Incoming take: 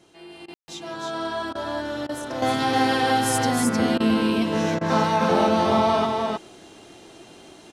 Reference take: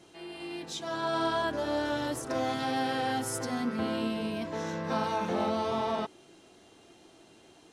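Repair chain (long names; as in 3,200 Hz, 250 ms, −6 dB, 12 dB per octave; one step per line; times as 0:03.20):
ambience match 0:00.54–0:00.68
repair the gap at 0:00.46/0:01.53/0:02.07/0:03.98/0:04.79, 20 ms
echo removal 310 ms −3 dB
level correction −9 dB, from 0:02.42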